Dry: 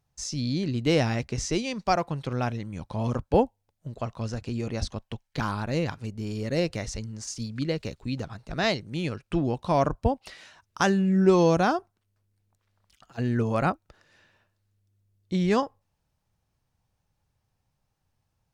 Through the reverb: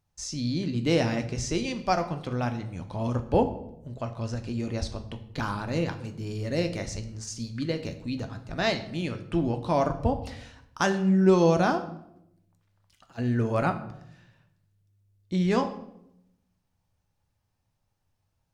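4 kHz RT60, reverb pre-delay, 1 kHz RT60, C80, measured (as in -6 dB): 0.55 s, 3 ms, 0.70 s, 15.0 dB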